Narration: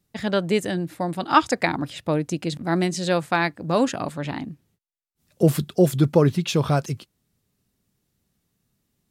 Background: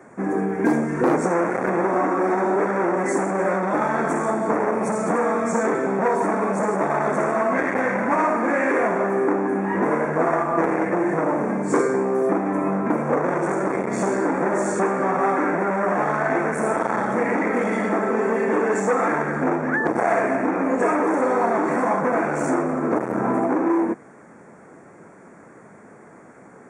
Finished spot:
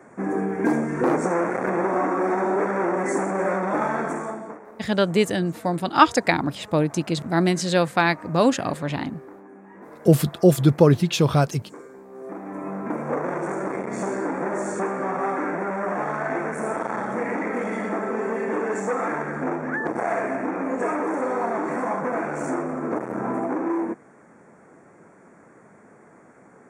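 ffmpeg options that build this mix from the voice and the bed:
-filter_complex "[0:a]adelay=4650,volume=2dB[a];[1:a]volume=16dB,afade=t=out:st=3.86:d=0.74:silence=0.0891251,afade=t=in:st=12.08:d=1.04:silence=0.125893[b];[a][b]amix=inputs=2:normalize=0"

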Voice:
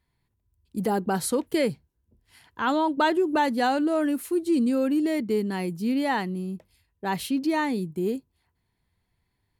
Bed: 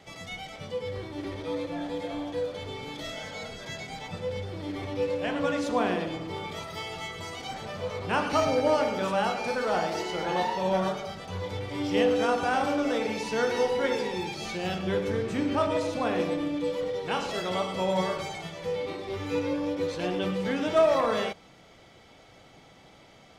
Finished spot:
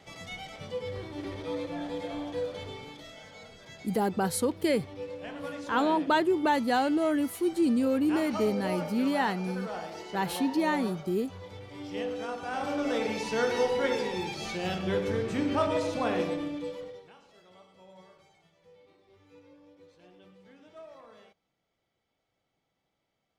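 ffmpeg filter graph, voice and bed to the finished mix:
-filter_complex "[0:a]adelay=3100,volume=-2.5dB[a];[1:a]volume=7.5dB,afade=t=out:st=2.6:d=0.45:silence=0.375837,afade=t=in:st=12.43:d=0.57:silence=0.334965,afade=t=out:st=16.13:d=1:silence=0.0501187[b];[a][b]amix=inputs=2:normalize=0"

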